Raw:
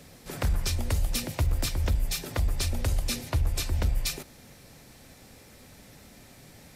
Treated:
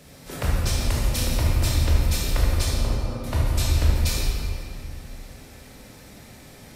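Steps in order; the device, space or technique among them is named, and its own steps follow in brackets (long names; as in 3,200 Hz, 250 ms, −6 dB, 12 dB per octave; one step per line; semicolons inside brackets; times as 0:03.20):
0:02.65–0:03.24: elliptic band-pass filter 110–1,200 Hz
stairwell (convolution reverb RT60 2.6 s, pre-delay 15 ms, DRR −5 dB)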